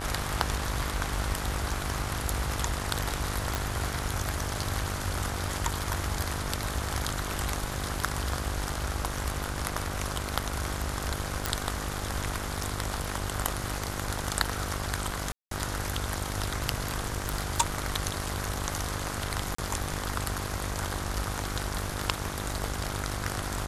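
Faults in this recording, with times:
mains buzz 50 Hz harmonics 33 −36 dBFS
0:03.55: click
0:11.46: click
0:15.32–0:15.51: drop-out 193 ms
0:17.04–0:17.61: clipping −23 dBFS
0:19.55–0:19.58: drop-out 34 ms

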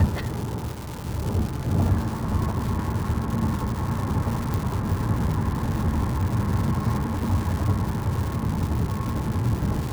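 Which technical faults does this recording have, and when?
surface crackle 380 per second −28 dBFS
0:04.54: click

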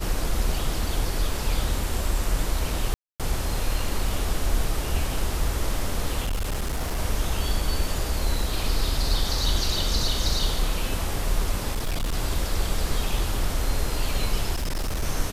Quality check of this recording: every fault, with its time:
0:02.94–0:03.20: drop-out 257 ms
0:06.21–0:06.99: clipping −22.5 dBFS
0:11.71–0:12.14: clipping −22 dBFS
0:14.53–0:15.03: clipping −23 dBFS

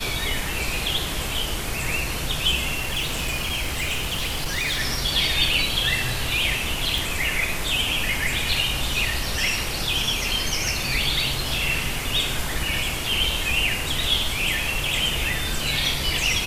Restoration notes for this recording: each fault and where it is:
0:02.75–0:04.81: clipping −21 dBFS
0:06.98: click

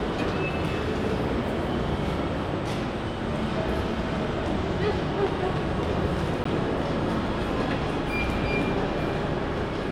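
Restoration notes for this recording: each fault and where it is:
0:06.44–0:06.45: drop-out 14 ms

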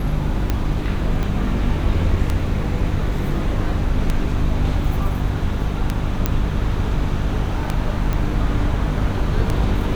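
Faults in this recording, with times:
mains hum 50 Hz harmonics 6 −24 dBFS
scratch tick 33 1/3 rpm −7 dBFS
0:01.23: click −13 dBFS
0:06.26: click −4 dBFS
0:08.13: click

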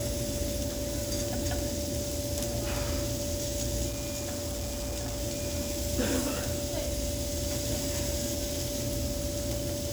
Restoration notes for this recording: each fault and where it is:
whistle 580 Hz −36 dBFS
0:03.88–0:05.21: clipping −30.5 dBFS

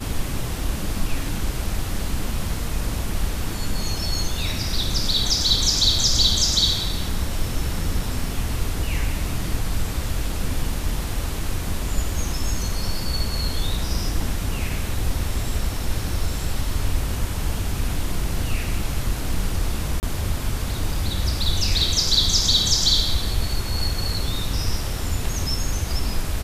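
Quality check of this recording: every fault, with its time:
0:20.00–0:20.03: drop-out 29 ms

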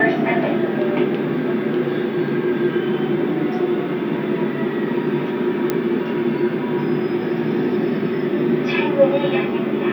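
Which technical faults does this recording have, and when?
0:05.70: click −6 dBFS

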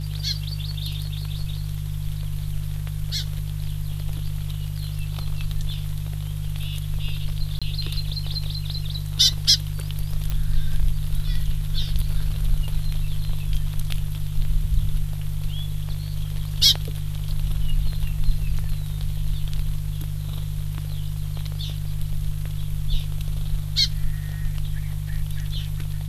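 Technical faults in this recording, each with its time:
mains hum 50 Hz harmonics 3 −28 dBFS
0:07.59–0:07.62: drop-out 26 ms
0:10.30: click −13 dBFS

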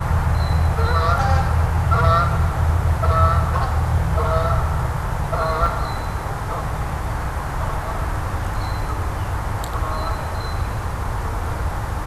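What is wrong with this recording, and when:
0:05.66: drop-out 3.1 ms

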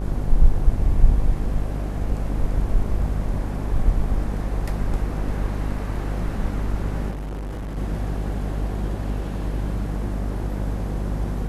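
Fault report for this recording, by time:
mains buzz 50 Hz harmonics 23 −26 dBFS
0:07.10–0:07.78: clipping −27.5 dBFS

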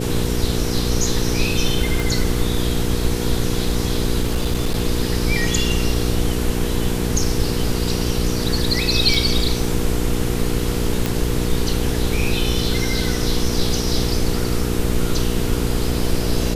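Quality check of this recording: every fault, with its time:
mains hum 60 Hz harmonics 8 −23 dBFS
0:02.00: click
0:04.22–0:04.75: clipping −14.5 dBFS
0:09.14: drop-out 3 ms
0:11.06: click

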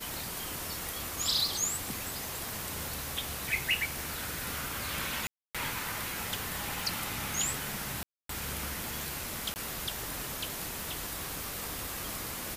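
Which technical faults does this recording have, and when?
scratch tick 45 rpm
0:02.49: click
0:05.27–0:05.55: drop-out 276 ms
0:08.03–0:08.29: drop-out 263 ms
0:09.54–0:09.56: drop-out 19 ms
0:11.44: click

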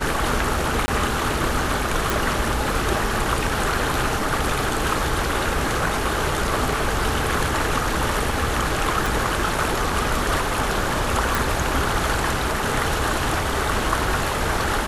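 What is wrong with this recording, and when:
0:00.86–0:00.88: drop-out 20 ms
0:02.10: click
0:09.06: click
0:11.35: click

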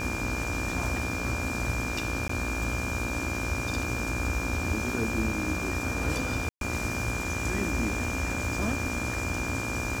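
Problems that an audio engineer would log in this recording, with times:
mains buzz 60 Hz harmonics 28 −36 dBFS
whistle 2,400 Hz −34 dBFS
0:02.28–0:02.29: drop-out 14 ms
0:06.49–0:06.61: drop-out 122 ms

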